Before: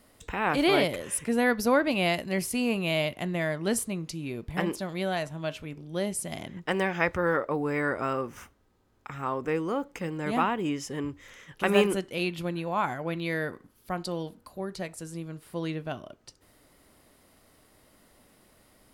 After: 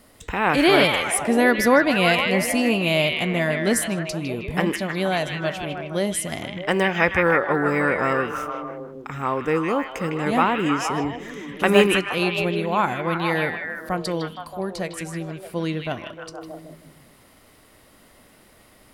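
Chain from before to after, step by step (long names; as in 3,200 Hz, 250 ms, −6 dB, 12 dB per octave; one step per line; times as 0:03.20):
echo through a band-pass that steps 156 ms, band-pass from 2,600 Hz, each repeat −0.7 octaves, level −0.5 dB
level +6.5 dB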